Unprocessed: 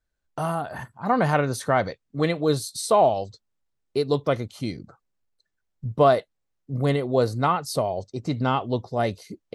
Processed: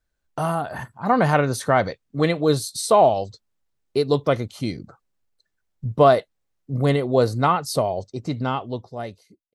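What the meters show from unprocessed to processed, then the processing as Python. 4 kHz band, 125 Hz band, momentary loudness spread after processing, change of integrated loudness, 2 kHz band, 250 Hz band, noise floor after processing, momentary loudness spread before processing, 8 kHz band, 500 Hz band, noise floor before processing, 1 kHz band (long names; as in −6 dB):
+2.5 dB, +2.5 dB, 16 LU, +3.0 dB, +2.5 dB, +2.5 dB, −76 dBFS, 14 LU, +3.0 dB, +3.0 dB, −78 dBFS, +2.5 dB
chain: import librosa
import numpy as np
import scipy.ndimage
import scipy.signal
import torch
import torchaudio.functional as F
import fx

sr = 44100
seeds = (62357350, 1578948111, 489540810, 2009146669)

y = fx.fade_out_tail(x, sr, length_s=1.75)
y = F.gain(torch.from_numpy(y), 3.0).numpy()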